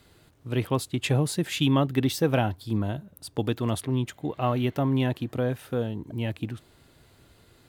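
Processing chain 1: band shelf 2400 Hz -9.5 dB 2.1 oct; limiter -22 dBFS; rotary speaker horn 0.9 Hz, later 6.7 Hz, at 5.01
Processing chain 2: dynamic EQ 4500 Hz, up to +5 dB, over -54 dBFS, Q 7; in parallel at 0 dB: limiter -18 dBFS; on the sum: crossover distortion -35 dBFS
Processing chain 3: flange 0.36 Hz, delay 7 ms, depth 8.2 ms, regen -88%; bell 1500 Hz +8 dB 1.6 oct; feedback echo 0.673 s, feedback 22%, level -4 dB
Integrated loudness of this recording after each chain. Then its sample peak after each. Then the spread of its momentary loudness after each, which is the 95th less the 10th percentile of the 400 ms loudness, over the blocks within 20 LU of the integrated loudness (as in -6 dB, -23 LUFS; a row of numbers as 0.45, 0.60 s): -35.0, -24.0, -29.5 LUFS; -21.5, -7.0, -9.0 dBFS; 6, 8, 13 LU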